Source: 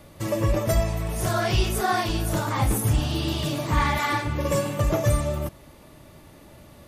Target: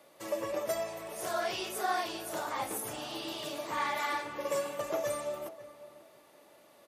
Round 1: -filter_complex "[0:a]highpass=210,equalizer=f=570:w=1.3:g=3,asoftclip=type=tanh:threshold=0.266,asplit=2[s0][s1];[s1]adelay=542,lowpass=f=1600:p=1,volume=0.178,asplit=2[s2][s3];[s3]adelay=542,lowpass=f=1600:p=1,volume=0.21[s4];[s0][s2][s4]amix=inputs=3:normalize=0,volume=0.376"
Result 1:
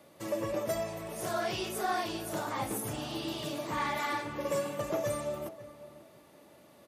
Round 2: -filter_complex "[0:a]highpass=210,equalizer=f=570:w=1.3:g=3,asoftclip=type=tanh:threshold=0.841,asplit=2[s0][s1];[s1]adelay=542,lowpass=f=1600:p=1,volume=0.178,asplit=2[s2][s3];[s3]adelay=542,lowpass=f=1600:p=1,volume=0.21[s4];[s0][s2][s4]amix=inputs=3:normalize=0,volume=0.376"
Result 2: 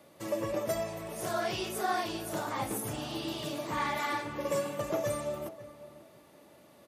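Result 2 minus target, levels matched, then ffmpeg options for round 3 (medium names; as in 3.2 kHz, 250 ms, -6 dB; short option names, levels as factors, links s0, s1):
250 Hz band +5.0 dB
-filter_complex "[0:a]highpass=420,equalizer=f=570:w=1.3:g=3,asoftclip=type=tanh:threshold=0.841,asplit=2[s0][s1];[s1]adelay=542,lowpass=f=1600:p=1,volume=0.178,asplit=2[s2][s3];[s3]adelay=542,lowpass=f=1600:p=1,volume=0.21[s4];[s0][s2][s4]amix=inputs=3:normalize=0,volume=0.376"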